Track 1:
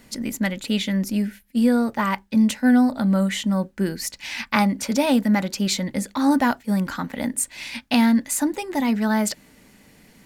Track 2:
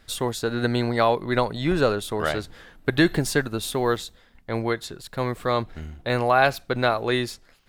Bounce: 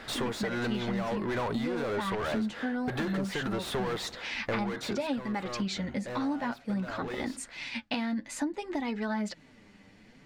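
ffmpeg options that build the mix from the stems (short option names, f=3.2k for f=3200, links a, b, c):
-filter_complex "[0:a]lowpass=4.5k,flanger=delay=2.3:depth=8.1:regen=24:speed=0.56:shape=sinusoidal,volume=-0.5dB[a];[1:a]asplit=2[b][c];[c]highpass=f=720:p=1,volume=37dB,asoftclip=type=tanh:threshold=-5.5dB[d];[b][d]amix=inputs=2:normalize=0,lowpass=f=1.2k:p=1,volume=-6dB,volume=-11dB,afade=t=out:st=4.86:d=0.43:silence=0.251189[e];[a][e]amix=inputs=2:normalize=0,acompressor=threshold=-29dB:ratio=6"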